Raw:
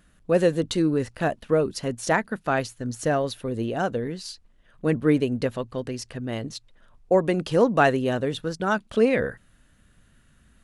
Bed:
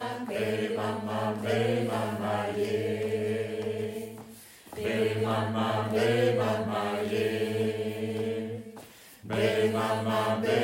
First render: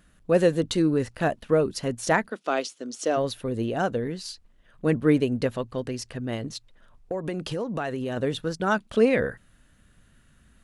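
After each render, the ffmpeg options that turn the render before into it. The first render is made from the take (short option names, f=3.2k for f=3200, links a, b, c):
-filter_complex "[0:a]asplit=3[a][b][c];[a]afade=t=out:st=2.29:d=0.02[d];[b]highpass=f=270:w=0.5412,highpass=f=270:w=1.3066,equalizer=f=880:t=q:w=4:g=-5,equalizer=f=1.7k:t=q:w=4:g=-8,equalizer=f=3.3k:t=q:w=4:g=5,equalizer=f=5.4k:t=q:w=4:g=5,lowpass=f=9.1k:w=0.5412,lowpass=f=9.1k:w=1.3066,afade=t=in:st=2.29:d=0.02,afade=t=out:st=3.16:d=0.02[e];[c]afade=t=in:st=3.16:d=0.02[f];[d][e][f]amix=inputs=3:normalize=0,asettb=1/sr,asplit=3[g][h][i];[g]atrim=end=6.354[j];[h]atrim=start=6.35:end=8.17,asetpts=PTS-STARTPTS,afade=t=in:d=0.004:c=qsin,afade=t=out:st=1.816:d=0.004:c=qsin,acompressor=threshold=-26dB:ratio=6:attack=3.2:release=140:knee=1:detection=peak[k];[i]atrim=start=8.166[l];[j][k]acrossfade=d=0.004:c1=hsin:c2=qsin[m];[m][l]acrossfade=d=0.004:c1=qsin:c2=hsin"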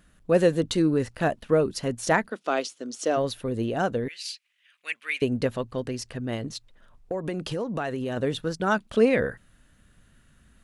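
-filter_complex "[0:a]asettb=1/sr,asplit=3[a][b][c];[a]atrim=end=4.084[d];[b]atrim=start=4.08:end=5.22,asetpts=PTS-STARTPTS,afade=t=in:d=0.004:c=qsin,afade=t=out:st=1.136:d=0.004:c=qsin,highpass=f=2.4k:t=q:w=3.9[e];[c]atrim=start=5.216[f];[d][e]acrossfade=d=0.004:c1=hsin:c2=qsin[g];[g][f]acrossfade=d=0.004:c1=qsin:c2=hsin"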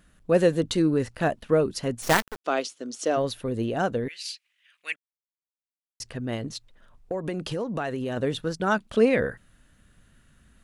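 -filter_complex "[0:a]asplit=3[a][b][c];[a]afade=t=out:st=2.01:d=0.02[d];[b]acrusher=bits=4:dc=4:mix=0:aa=0.000001,afade=t=in:st=2.01:d=0.02,afade=t=out:st=2.44:d=0.02[e];[c]afade=t=in:st=2.44:d=0.02[f];[d][e][f]amix=inputs=3:normalize=0,asplit=3[g][h][i];[g]atrim=end=4.96,asetpts=PTS-STARTPTS,afade=t=out:st=4.956:d=0.004:c=hsin[j];[h]atrim=start=4.96:end=6,asetpts=PTS-STARTPTS,volume=0[k];[i]atrim=start=6,asetpts=PTS-STARTPTS,afade=t=in:d=0.004:c=hsin[l];[j][k][l]concat=n=3:v=0:a=1"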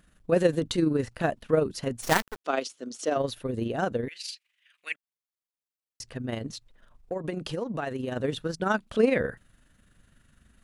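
-af "tremolo=f=24:d=0.519"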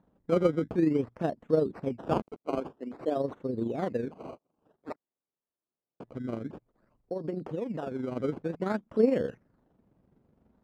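-af "acrusher=samples=17:mix=1:aa=0.000001:lfo=1:lforange=17:lforate=0.52,bandpass=f=310:t=q:w=0.71:csg=0"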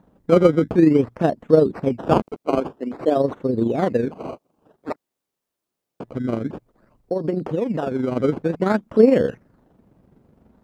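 -af "volume=11dB,alimiter=limit=-2dB:level=0:latency=1"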